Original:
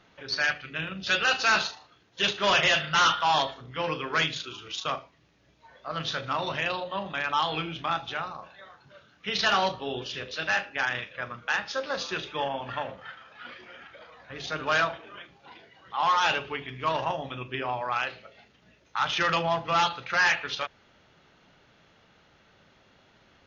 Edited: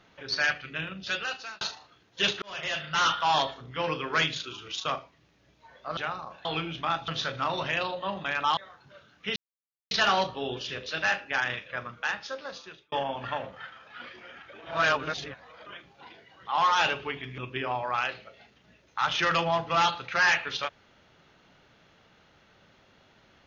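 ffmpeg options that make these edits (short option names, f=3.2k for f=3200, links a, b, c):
-filter_complex "[0:a]asplit=12[a][b][c][d][e][f][g][h][i][j][k][l];[a]atrim=end=1.61,asetpts=PTS-STARTPTS,afade=t=out:st=0.68:d=0.93[m];[b]atrim=start=1.61:end=2.42,asetpts=PTS-STARTPTS,afade=t=in:d=0.004:c=hsin,afade=t=out:st=0.806:d=0.004:c=hsin[n];[c]atrim=start=2.42:end=5.972,asetpts=PTS-STARTPTS,afade=t=in:d=1.23:c=qsin[o];[d]atrim=start=8.088:end=8.572[p];[e]atrim=start=7.458:end=8.092[q];[f]atrim=start=5.968:end=7.462[r];[g]atrim=start=8.568:end=9.36,asetpts=PTS-STARTPTS,afade=t=out:st=0.788:d=0.004:c=hsin,apad=pad_dur=0.55[s];[h]atrim=start=9.36:end=12.37,asetpts=PTS-STARTPTS,afade=t=in:d=0.004:c=hsin,afade=t=out:st=1.87:d=1.14[t];[i]atrim=start=12.37:end=13.982,asetpts=PTS-STARTPTS,afade=t=in:d=0.004:c=hsin[u];[j]atrim=start=13.978:end=15.112,asetpts=PTS-STARTPTS,areverse[v];[k]atrim=start=15.108:end=16.832[w];[l]atrim=start=17.358[x];[m][n][o]concat=n=3:v=0:a=1[y];[y][p]acrossfade=d=0.004:c1=hsin:c2=hsin[z];[z][q]acrossfade=d=0.004:c1=hsin:c2=hsin[aa];[aa][r]acrossfade=d=0.004:c1=hsin:c2=hsin[ab];[s][t][u]concat=n=3:v=0:a=1[ac];[ab][ac]acrossfade=d=0.004:c1=hsin:c2=hsin[ad];[ad][v]acrossfade=d=0.004:c1=hsin:c2=hsin[ae];[ae][w]acrossfade=d=0.004:c1=hsin:c2=hsin[af];[af][x]acrossfade=d=0.004:c1=hsin:c2=hsin"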